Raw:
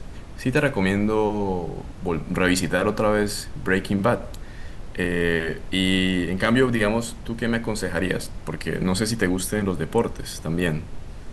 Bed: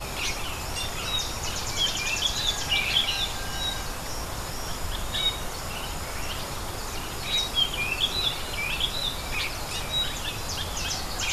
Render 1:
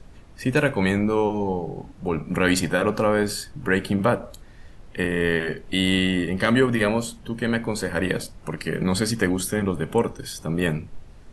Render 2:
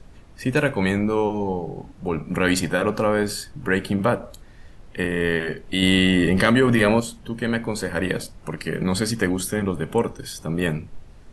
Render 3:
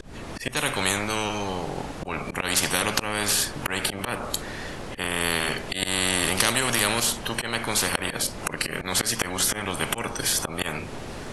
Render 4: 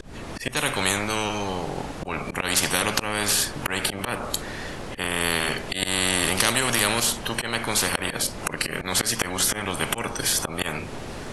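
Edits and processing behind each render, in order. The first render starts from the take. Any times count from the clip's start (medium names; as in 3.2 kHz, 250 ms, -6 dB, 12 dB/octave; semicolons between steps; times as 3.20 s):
noise print and reduce 9 dB
5.82–7.00 s: level flattener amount 70%
slow attack 306 ms; spectrum-flattening compressor 4:1
trim +1 dB; peak limiter -3 dBFS, peak gain reduction 1.5 dB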